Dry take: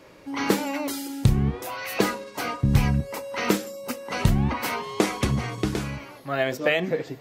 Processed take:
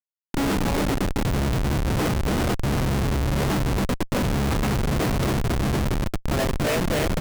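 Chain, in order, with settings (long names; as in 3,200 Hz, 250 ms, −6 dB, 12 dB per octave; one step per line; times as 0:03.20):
bouncing-ball delay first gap 280 ms, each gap 0.8×, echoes 5
pitch-shifted copies added −3 semitones −12 dB
comparator with hysteresis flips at −22.5 dBFS
level +1.5 dB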